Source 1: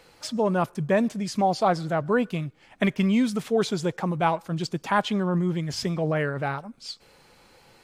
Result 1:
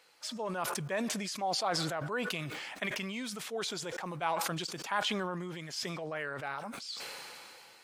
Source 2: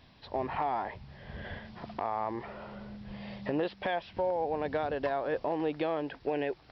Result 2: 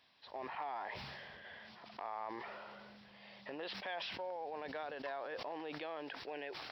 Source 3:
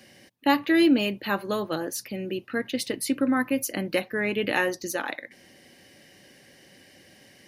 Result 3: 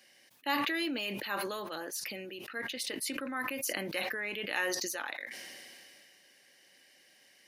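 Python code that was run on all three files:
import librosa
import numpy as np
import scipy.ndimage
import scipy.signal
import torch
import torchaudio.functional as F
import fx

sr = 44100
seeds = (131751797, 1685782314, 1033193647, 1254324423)

y = fx.highpass(x, sr, hz=1200.0, slope=6)
y = fx.sustainer(y, sr, db_per_s=21.0)
y = y * 10.0 ** (-6.0 / 20.0)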